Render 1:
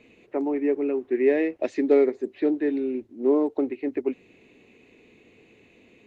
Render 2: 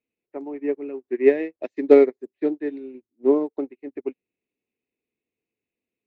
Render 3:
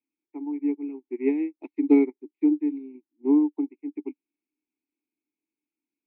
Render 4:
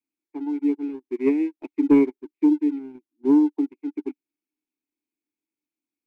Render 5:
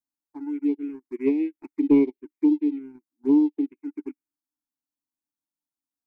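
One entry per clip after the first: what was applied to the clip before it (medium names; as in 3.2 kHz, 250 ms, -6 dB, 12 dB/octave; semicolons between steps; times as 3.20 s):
upward expansion 2.5:1, over -42 dBFS; trim +8 dB
vowel filter u; trim +5.5 dB
waveshaping leveller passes 1
touch-sensitive phaser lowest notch 390 Hz, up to 1.5 kHz, full sweep at -17 dBFS; trim -1 dB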